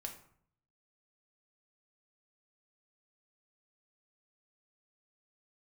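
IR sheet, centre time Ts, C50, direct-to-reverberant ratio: 16 ms, 9.0 dB, 2.0 dB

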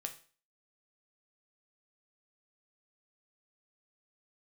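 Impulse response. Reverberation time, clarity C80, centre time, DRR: 0.40 s, 17.0 dB, 9 ms, 4.5 dB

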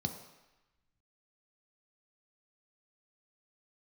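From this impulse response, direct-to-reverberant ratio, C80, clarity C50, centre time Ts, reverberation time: 4.5 dB, 10.5 dB, 9.0 dB, 19 ms, 1.0 s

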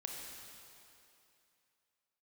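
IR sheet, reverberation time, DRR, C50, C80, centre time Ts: 2.7 s, −0.5 dB, 1.0 dB, 2.0 dB, 115 ms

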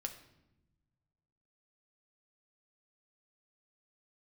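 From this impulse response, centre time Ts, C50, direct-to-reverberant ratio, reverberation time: 12 ms, 10.5 dB, 4.5 dB, non-exponential decay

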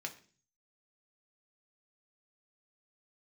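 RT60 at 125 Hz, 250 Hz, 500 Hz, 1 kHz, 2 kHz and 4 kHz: 0.75, 0.60, 0.45, 0.35, 0.40, 0.50 seconds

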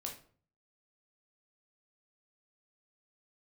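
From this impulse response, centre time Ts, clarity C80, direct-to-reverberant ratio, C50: 21 ms, 14.0 dB, 0.0 dB, 8.5 dB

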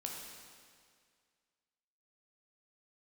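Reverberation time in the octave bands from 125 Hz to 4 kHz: 2.0, 2.0, 2.1, 2.0, 2.0, 1.9 seconds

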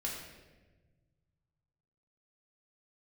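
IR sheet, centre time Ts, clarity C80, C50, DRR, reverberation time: 59 ms, 4.0 dB, 2.0 dB, −4.0 dB, 1.3 s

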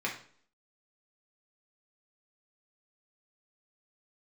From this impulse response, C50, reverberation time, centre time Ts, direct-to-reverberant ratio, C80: 8.0 dB, 0.55 s, 23 ms, −3.0 dB, 13.0 dB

